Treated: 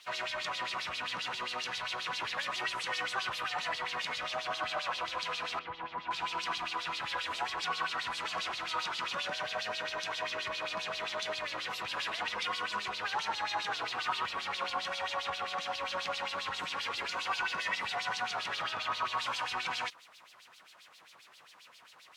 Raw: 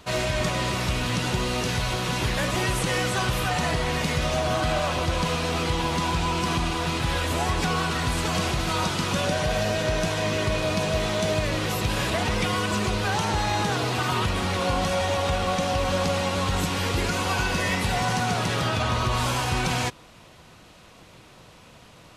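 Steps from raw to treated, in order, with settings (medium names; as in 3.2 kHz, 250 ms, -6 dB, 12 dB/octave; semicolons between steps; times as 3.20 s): word length cut 8-bit, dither triangular; LFO band-pass sine 7.5 Hz 990–4300 Hz; 5.59–6.11 s: tape spacing loss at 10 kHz 38 dB; trim -1 dB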